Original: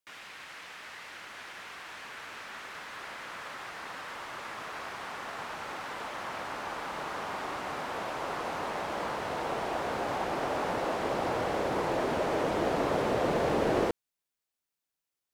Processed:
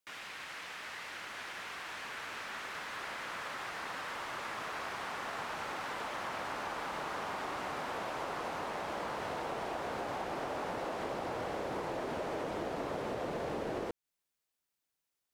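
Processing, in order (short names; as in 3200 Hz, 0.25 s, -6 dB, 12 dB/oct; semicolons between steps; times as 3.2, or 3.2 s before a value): compressor, threshold -36 dBFS, peak gain reduction 12.5 dB; gain +1 dB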